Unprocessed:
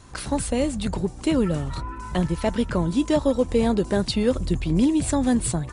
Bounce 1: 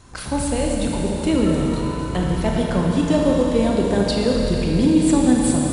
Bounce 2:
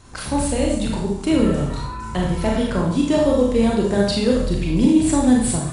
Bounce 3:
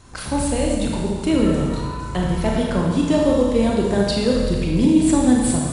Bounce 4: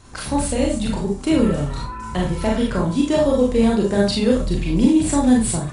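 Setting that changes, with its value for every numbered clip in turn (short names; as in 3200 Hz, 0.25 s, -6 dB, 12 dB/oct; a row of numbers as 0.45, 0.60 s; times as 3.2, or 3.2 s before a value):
Schroeder reverb, RT60: 4, 0.7, 1.6, 0.32 s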